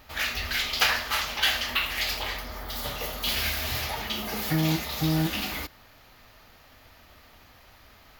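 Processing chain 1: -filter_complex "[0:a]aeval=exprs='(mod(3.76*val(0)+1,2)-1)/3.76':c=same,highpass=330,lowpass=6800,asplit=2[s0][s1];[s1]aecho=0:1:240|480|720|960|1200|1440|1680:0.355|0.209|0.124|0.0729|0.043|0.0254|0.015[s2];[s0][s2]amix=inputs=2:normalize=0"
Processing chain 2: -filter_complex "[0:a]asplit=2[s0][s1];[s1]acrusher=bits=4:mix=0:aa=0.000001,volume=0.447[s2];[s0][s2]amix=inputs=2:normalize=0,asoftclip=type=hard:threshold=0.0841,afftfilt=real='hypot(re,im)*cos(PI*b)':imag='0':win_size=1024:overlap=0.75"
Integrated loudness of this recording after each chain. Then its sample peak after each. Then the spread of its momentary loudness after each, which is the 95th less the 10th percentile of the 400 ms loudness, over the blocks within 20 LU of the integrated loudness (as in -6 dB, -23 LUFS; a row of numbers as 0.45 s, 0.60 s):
-27.5 LUFS, -29.0 LUFS; -11.5 dBFS, -5.0 dBFS; 11 LU, 7 LU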